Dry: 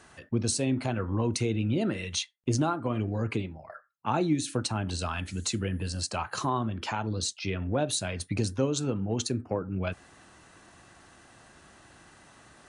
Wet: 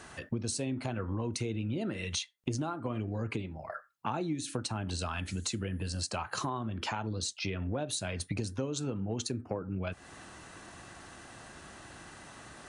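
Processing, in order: compressor 4:1, threshold -38 dBFS, peak gain reduction 14.5 dB; gain +5 dB

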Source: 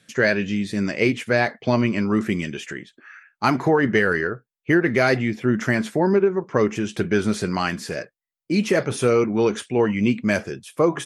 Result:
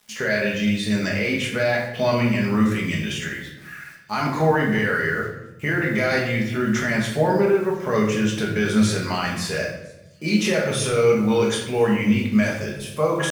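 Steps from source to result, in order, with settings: bell 310 Hz -10.5 dB 2.2 oct; limiter -19 dBFS, peak gain reduction 11 dB; small resonant body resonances 520/3600 Hz, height 8 dB, ringing for 35 ms; tempo 0.83×; bit-crush 9-bit; thin delay 1.007 s, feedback 71%, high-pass 4700 Hz, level -24 dB; shoebox room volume 290 m³, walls mixed, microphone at 1.4 m; gain +2.5 dB

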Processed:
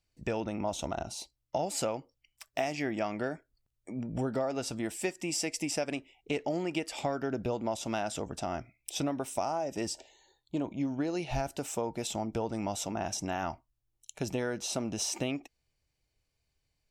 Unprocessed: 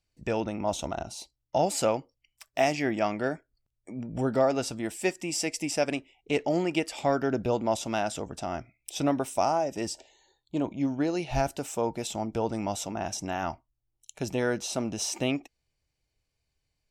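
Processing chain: compressor 4:1, threshold -29 dBFS, peak gain reduction 9.5 dB

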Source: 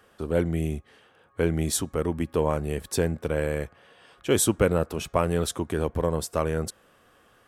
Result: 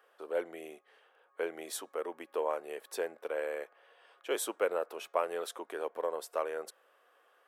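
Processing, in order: HPF 450 Hz 24 dB/oct; bell 7100 Hz -9 dB 1.9 oct; gain -5.5 dB

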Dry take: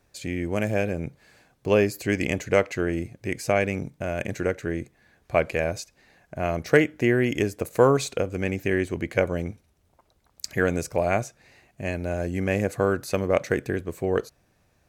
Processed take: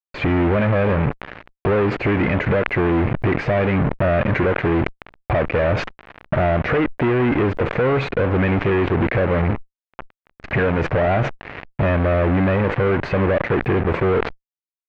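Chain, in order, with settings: compressor 20:1, threshold -33 dBFS, peak gain reduction 22.5 dB; sample leveller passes 2; fuzz box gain 49 dB, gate -47 dBFS; LPF 2300 Hz 24 dB/oct; sustainer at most 100 dB/s; gain -2 dB

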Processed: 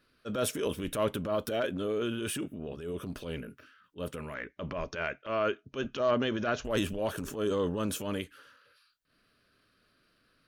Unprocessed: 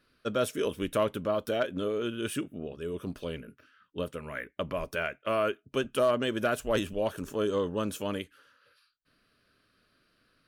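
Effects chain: 4.34–6.65 Chebyshev low-pass 6700 Hz, order 8; transient shaper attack -9 dB, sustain +5 dB

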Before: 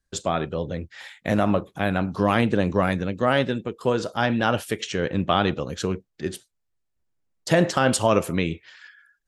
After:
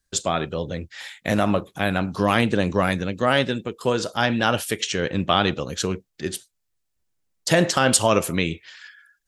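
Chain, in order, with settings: high shelf 2500 Hz +8.5 dB

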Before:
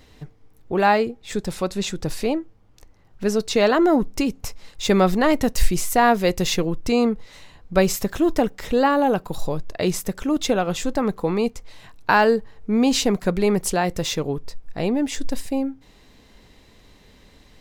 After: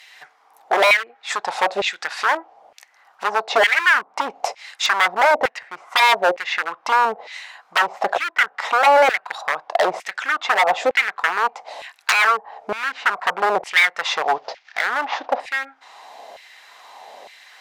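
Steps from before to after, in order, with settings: 14.15–15.4 CVSD 32 kbps; treble ducked by the level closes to 630 Hz, closed at -14.5 dBFS; HPF 68 Hz 6 dB/oct; bell 740 Hz +13.5 dB 0.78 oct; in parallel at -1 dB: compressor 8:1, threshold -22 dBFS, peak gain reduction 16 dB; on the sum: wavefolder -13 dBFS; LFO high-pass saw down 1.1 Hz 560–2300 Hz; gain +1.5 dB

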